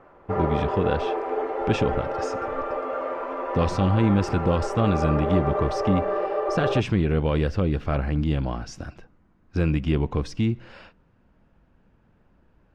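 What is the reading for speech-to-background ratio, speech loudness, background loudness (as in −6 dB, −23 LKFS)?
2.5 dB, −25.5 LKFS, −28.0 LKFS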